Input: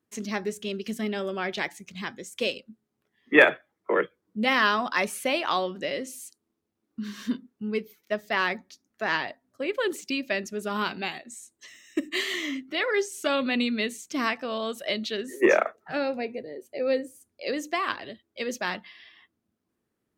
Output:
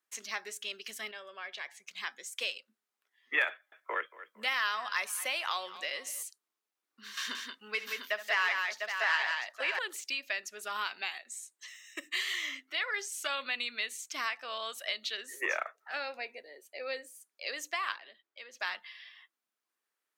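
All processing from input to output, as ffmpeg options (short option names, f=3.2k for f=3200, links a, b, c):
-filter_complex "[0:a]asettb=1/sr,asplit=3[a][b][c];[a]atrim=end=1.114[d];[b]atrim=start=1.11:end=1.87,asetpts=PTS-STARTPTS,afade=t=in:d=0.004:c=qsin,afade=t=out:st=0.756:d=0.004:c=qsin,lowpass=f=3.1k:p=1,aecho=1:1:1.8:0.36,atrim=end_sample=33516,acompressor=threshold=-40dB:ratio=2:attack=3.2:release=140:knee=1:detection=peak[e];[c]atrim=start=1.866[f];[d][e]acrossfade=d=0.004:c1=hsin:c2=qsin[g];[g][f]acrossfade=d=0.004:c1=qsin:c2=hsin,asettb=1/sr,asplit=3[h][i][j];[h]atrim=end=3.494[k];[i]atrim=start=3.49:end=6.23,asetpts=PTS-STARTPTS,afade=t=in:d=0.004:c=qsin,afade=t=out:st=2.736:d=0.004:c=qsin,highshelf=f=8.7k:g=6,asplit=2[l][m];[m]adelay=229,lowpass=f=4.7k:p=1,volume=-19dB,asplit=2[n][o];[o]adelay=229,lowpass=f=4.7k:p=1,volume=0.38,asplit=2[p][q];[q]adelay=229,lowpass=f=4.7k:p=1,volume=0.38[r];[l][n][p][r]amix=inputs=4:normalize=0,atrim=end_sample=120834[s];[j]atrim=start=6.226[t];[k][s]acrossfade=d=0.004:c1=hsin:c2=qsin[u];[u][t]acrossfade=d=0.004:c1=qsin:c2=hsin,asettb=1/sr,asplit=3[v][w][x];[v]atrim=end=7.174[y];[w]atrim=start=7.17:end=9.79,asetpts=PTS-STARTPTS,afade=t=in:d=0.004:c=qsin,afade=t=out:st=2.616:d=0.004:c=qsin,acontrast=30,asplit=2[z][aa];[aa]highpass=f=720:p=1,volume=8dB,asoftclip=type=tanh:threshold=-6.5dB[ab];[z][ab]amix=inputs=2:normalize=0,lowpass=f=6.8k:p=1,volume=-6dB,aecho=1:1:67|178|570|699:0.2|0.501|0.211|0.447,atrim=end_sample=115542[ac];[x]atrim=start=9.786[ad];[y][ac]acrossfade=d=0.004:c1=hsin:c2=qsin[ae];[ae][ad]acrossfade=d=0.004:c1=qsin:c2=hsin,asettb=1/sr,asplit=3[af][ag][ah];[af]atrim=end=17.974[ai];[ag]atrim=start=17.97:end=18.6,asetpts=PTS-STARTPTS,afade=t=in:d=0.004:c=qsin,afade=t=out:st=0.626:d=0.004:c=qsin,lowpass=f=2.7k:p=1,acompressor=threshold=-43dB:ratio=2.5:attack=3.2:release=140:knee=1:detection=peak[aj];[ah]atrim=start=18.596[ak];[ai][aj]acrossfade=d=0.004:c1=hsin:c2=qsin[al];[al][ak]acrossfade=d=0.004:c1=qsin:c2=hsin,highpass=1.1k,acompressor=threshold=-33dB:ratio=2"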